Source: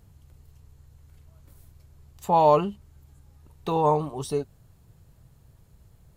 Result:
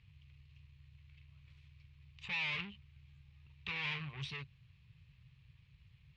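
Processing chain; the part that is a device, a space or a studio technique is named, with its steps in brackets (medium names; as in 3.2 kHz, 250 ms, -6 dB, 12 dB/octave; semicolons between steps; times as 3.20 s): scooped metal amplifier (valve stage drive 35 dB, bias 0.7; cabinet simulation 83–3400 Hz, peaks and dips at 140 Hz +7 dB, 440 Hz -6 dB, 670 Hz -5 dB, 1.1 kHz +7 dB, 2.5 kHz +7 dB; amplifier tone stack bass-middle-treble 10-0-10); high-order bell 940 Hz -13 dB; trim +9 dB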